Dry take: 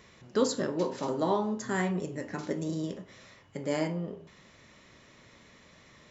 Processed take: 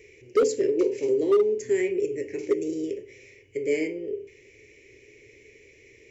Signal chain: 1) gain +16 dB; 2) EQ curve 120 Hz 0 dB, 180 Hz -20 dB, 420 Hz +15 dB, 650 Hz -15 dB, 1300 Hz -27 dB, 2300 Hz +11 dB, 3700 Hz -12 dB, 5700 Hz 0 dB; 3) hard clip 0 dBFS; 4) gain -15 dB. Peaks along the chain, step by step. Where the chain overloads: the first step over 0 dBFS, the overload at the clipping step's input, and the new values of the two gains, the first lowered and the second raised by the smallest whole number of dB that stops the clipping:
+2.5, +9.5, 0.0, -15.0 dBFS; step 1, 9.5 dB; step 1 +6 dB, step 4 -5 dB

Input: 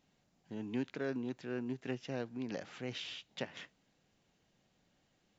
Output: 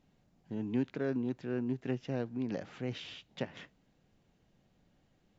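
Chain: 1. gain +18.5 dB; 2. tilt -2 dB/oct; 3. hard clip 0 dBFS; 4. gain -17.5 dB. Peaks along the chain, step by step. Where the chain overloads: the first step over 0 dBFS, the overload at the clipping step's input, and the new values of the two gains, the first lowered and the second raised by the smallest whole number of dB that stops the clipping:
-4.5, -3.5, -3.5, -21.0 dBFS; no overload

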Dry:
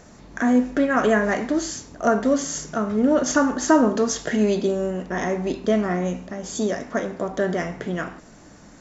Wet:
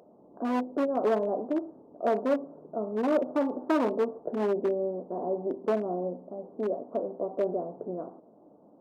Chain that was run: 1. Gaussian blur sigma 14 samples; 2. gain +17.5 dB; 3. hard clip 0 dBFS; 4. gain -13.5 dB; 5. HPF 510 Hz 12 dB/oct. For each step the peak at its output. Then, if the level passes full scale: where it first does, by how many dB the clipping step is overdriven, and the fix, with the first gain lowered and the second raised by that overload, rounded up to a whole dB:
-11.0, +6.5, 0.0, -13.5, -14.0 dBFS; step 2, 6.5 dB; step 2 +10.5 dB, step 4 -6.5 dB

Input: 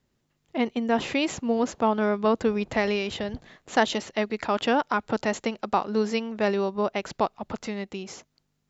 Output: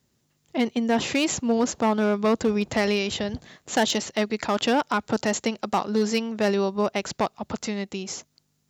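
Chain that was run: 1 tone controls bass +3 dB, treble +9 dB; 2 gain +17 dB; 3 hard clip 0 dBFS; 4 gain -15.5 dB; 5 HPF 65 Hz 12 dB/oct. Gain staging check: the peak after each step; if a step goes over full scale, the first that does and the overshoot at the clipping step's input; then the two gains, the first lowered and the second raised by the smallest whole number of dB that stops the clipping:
-7.0, +10.0, 0.0, -15.5, -12.5 dBFS; step 2, 10.0 dB; step 2 +7 dB, step 4 -5.5 dB

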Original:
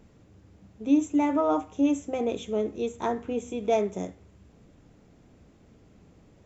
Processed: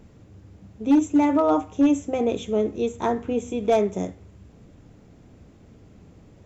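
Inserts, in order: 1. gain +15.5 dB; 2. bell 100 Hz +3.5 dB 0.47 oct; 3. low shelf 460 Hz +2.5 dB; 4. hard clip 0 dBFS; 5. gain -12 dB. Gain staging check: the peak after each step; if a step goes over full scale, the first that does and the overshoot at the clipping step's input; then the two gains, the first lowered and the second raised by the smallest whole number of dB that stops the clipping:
+3.5, +3.5, +5.5, 0.0, -12.0 dBFS; step 1, 5.5 dB; step 1 +9.5 dB, step 5 -6 dB

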